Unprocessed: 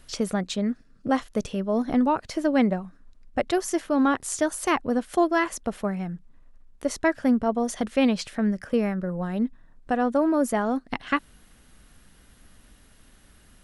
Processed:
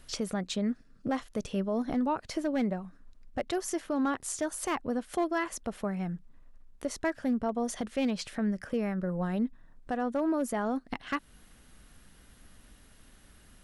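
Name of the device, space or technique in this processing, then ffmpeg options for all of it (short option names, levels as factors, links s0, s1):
clipper into limiter: -af "asoftclip=type=hard:threshold=0.2,alimiter=limit=0.1:level=0:latency=1:release=225,volume=0.794"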